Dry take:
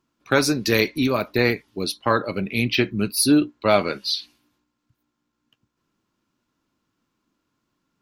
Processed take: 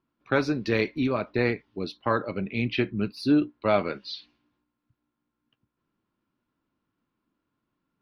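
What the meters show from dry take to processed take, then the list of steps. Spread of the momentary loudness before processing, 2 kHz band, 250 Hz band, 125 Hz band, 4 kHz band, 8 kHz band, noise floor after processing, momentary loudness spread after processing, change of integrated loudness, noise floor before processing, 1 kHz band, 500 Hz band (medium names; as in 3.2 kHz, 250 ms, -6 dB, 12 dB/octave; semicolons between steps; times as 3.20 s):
8 LU, -6.5 dB, -4.5 dB, -4.0 dB, -12.0 dB, under -25 dB, -83 dBFS, 10 LU, -5.5 dB, -78 dBFS, -5.5 dB, -4.5 dB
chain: distance through air 260 m; trim -4 dB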